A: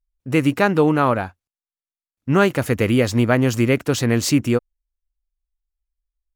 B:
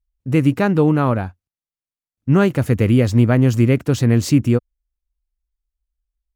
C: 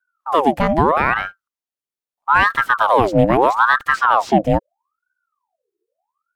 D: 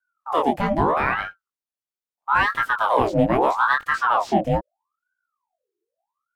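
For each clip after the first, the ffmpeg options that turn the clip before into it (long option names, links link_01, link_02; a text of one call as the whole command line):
ffmpeg -i in.wav -af "equalizer=frequency=88:width=0.3:gain=11.5,volume=-4.5dB" out.wav
ffmpeg -i in.wav -filter_complex "[0:a]acrossover=split=340|1100|4300[link_01][link_02][link_03][link_04];[link_04]acompressor=threshold=-45dB:ratio=6[link_05];[link_01][link_02][link_03][link_05]amix=inputs=4:normalize=0,aeval=exprs='val(0)*sin(2*PI*940*n/s+940*0.6/0.78*sin(2*PI*0.78*n/s))':channel_layout=same,volume=2.5dB" out.wav
ffmpeg -i in.wav -af "flanger=delay=18:depth=5.7:speed=1.5,volume=-2dB" out.wav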